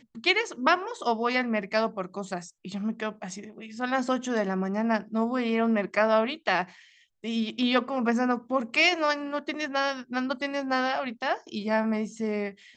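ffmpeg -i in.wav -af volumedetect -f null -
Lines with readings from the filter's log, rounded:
mean_volume: -27.9 dB
max_volume: -7.5 dB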